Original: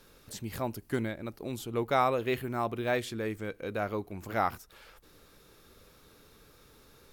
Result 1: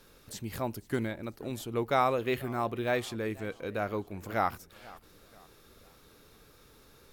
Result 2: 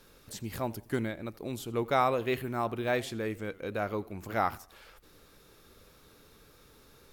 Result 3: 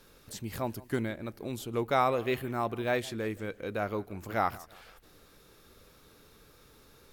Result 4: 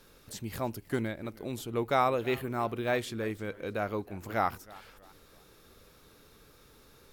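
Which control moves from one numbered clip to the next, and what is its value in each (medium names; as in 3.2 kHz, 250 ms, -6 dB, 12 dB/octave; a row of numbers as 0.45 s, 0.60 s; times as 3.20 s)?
modulated delay, time: 489 ms, 85 ms, 166 ms, 316 ms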